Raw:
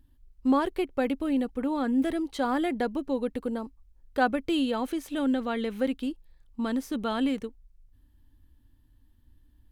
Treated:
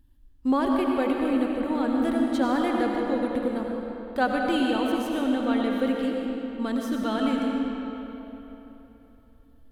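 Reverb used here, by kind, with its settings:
comb and all-pass reverb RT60 3.5 s, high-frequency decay 0.7×, pre-delay 50 ms, DRR −0.5 dB

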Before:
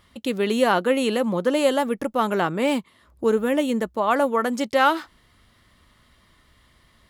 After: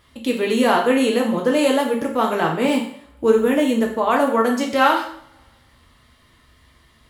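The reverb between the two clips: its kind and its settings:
coupled-rooms reverb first 0.53 s, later 1.8 s, from −28 dB, DRR −1 dB

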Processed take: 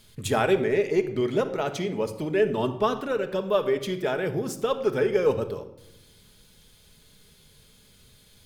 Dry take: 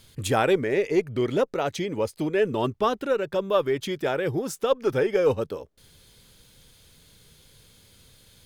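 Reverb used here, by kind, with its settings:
rectangular room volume 2,900 cubic metres, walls furnished, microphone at 1.4 metres
level −2 dB

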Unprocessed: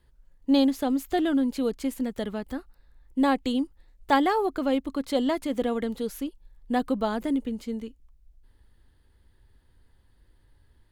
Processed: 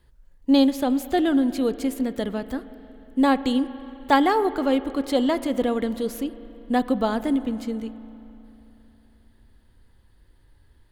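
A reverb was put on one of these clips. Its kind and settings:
spring reverb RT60 3.3 s, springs 36/45 ms, chirp 65 ms, DRR 14 dB
level +3.5 dB

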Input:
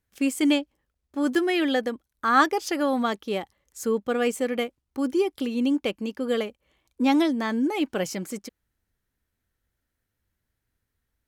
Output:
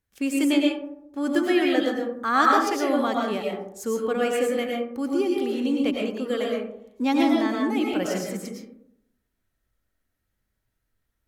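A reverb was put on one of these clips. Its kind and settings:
comb and all-pass reverb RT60 0.75 s, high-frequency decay 0.35×, pre-delay 70 ms, DRR −1.5 dB
level −2.5 dB

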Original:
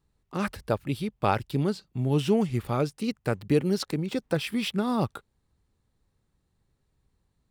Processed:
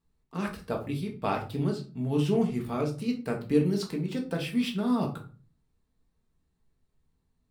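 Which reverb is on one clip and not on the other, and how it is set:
rectangular room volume 230 cubic metres, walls furnished, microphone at 1.6 metres
level −6.5 dB

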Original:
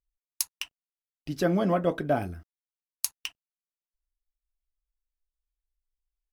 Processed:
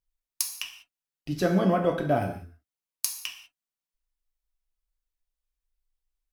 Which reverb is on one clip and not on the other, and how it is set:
reverb whose tail is shaped and stops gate 220 ms falling, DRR 3 dB

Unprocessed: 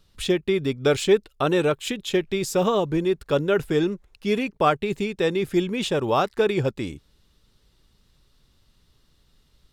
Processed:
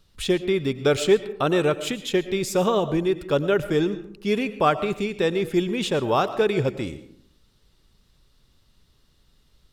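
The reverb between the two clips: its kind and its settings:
comb and all-pass reverb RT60 0.65 s, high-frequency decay 0.45×, pre-delay 70 ms, DRR 13 dB

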